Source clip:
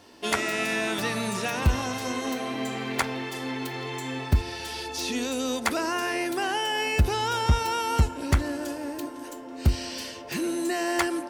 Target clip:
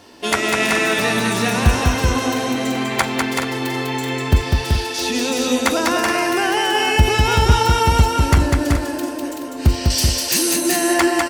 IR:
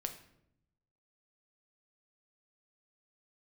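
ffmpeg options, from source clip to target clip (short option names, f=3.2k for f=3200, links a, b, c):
-filter_complex "[0:a]asettb=1/sr,asplit=3[a][b][c];[a]atrim=end=4.444[d];[b]atrim=start=4.44:end=5.01,asetpts=PTS-STARTPTS,afade=t=in:d=0.004:c=qsin,afade=t=out:st=0.566:d=0.004:c=qsin,highpass=160[e];[c]atrim=start=5.006[f];[d][e]acrossfade=d=0.004:c1=hsin:c2=qsin[g];[g][f]acrossfade=d=0.004:c1=qsin:c2=hsin,asettb=1/sr,asplit=3[h][i][j];[h]atrim=end=9.904[k];[i]atrim=start=9.9:end=10.56,asetpts=PTS-STARTPTS,afade=t=in:d=0.004:c=qsin,afade=t=out:st=0.656:d=0.004:c=qsin,bass=f=250:g=-5,treble=f=4k:g=15[l];[j]atrim=start=10.556[m];[k][l]acrossfade=d=0.004:c1=hsin:c2=qsin[n];[n][m]acrossfade=d=0.004:c1=qsin:c2=hsin,aecho=1:1:199|380|425:0.668|0.596|0.299,volume=7dB"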